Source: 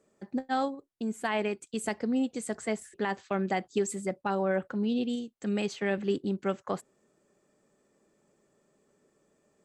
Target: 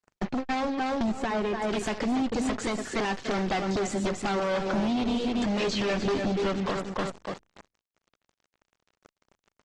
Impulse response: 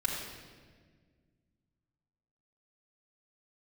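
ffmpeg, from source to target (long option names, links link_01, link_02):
-filter_complex "[0:a]asplit=2[link_01][link_02];[link_02]aeval=exprs='(mod(9.44*val(0)+1,2)-1)/9.44':channel_layout=same,volume=-5dB[link_03];[link_01][link_03]amix=inputs=2:normalize=0,asettb=1/sr,asplit=3[link_04][link_05][link_06];[link_04]atrim=end=5.584[link_07];[link_05]atrim=start=5.58:end=6.26,asetpts=PTS-STARTPTS,afade=type=in:duration=0.004:curve=qsin,afade=type=out:start_time=0.676:duration=0.004:curve=qsin,asplit=2[link_08][link_09];[link_09]adelay=22,volume=-2.5dB[link_10];[link_08][link_10]amix=inputs=2:normalize=0,atrim=end_sample=29988[link_11];[link_06]atrim=start=6.256[link_12];[link_07][link_11]acrossfade=duration=0.004:curve1=hsin:curve2=qsin[link_13];[link_13][link_12]acrossfade=duration=0.004:curve1=qsin:curve2=hsin,asplit=2[link_14][link_15];[link_15]aecho=0:1:289|578|867:0.316|0.0664|0.0139[link_16];[link_14][link_16]amix=inputs=2:normalize=0,acompressor=threshold=-35dB:ratio=16,aeval=exprs='0.0447*(cos(1*acos(clip(val(0)/0.0447,-1,1)))-cos(1*PI/2))+0.0126*(cos(4*acos(clip(val(0)/0.0447,-1,1)))-cos(4*PI/2))+0.02*(cos(5*acos(clip(val(0)/0.0447,-1,1)))-cos(5*PI/2))+0.000708*(cos(8*acos(clip(val(0)/0.0447,-1,1)))-cos(8*PI/2))':channel_layout=same,acrusher=bits=6:mix=0:aa=0.5,asettb=1/sr,asplit=3[link_17][link_18][link_19];[link_17]atrim=end=1.114[link_20];[link_18]atrim=start=1.11:end=1.69,asetpts=PTS-STARTPTS,afade=type=in:duration=0.004:curve=qsin,afade=type=out:start_time=0.576:duration=0.004:curve=qsin,highshelf=frequency=2300:gain=-10[link_21];[link_19]atrim=start=1.686[link_22];[link_20][link_21]acrossfade=duration=0.004:curve1=hsin:curve2=qsin[link_23];[link_23][link_22]acrossfade=duration=0.004:curve1=qsin:curve2=hsin,alimiter=level_in=4.5dB:limit=-24dB:level=0:latency=1:release=115,volume=-4.5dB,lowpass=frequency=6200:width=0.5412,lowpass=frequency=6200:width=1.3066,volume=8dB" -ar 48000 -c:a libopus -b:a 16k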